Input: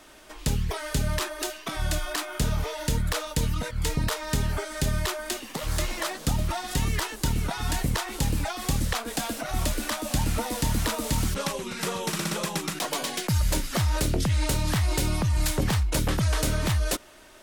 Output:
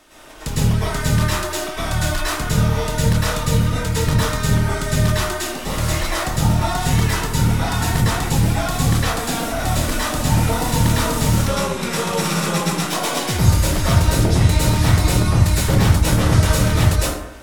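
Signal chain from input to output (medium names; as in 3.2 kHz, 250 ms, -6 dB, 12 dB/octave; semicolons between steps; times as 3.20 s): plate-style reverb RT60 0.82 s, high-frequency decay 0.5×, pre-delay 95 ms, DRR -9.5 dB; trim -1 dB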